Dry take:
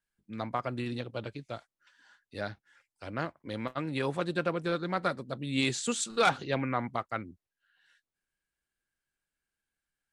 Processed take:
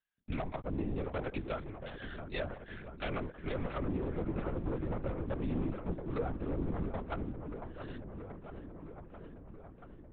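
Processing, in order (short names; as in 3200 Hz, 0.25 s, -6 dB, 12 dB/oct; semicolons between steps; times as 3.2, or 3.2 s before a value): HPF 100 Hz 12 dB/oct; treble ducked by the level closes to 320 Hz, closed at -29.5 dBFS; tilt shelf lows -4 dB; de-hum 424.1 Hz, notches 2; compressor 3:1, threshold -44 dBFS, peak gain reduction 9.5 dB; sample leveller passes 3; dark delay 0.676 s, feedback 73%, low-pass 2200 Hz, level -9 dB; LPC vocoder at 8 kHz whisper; gain +1 dB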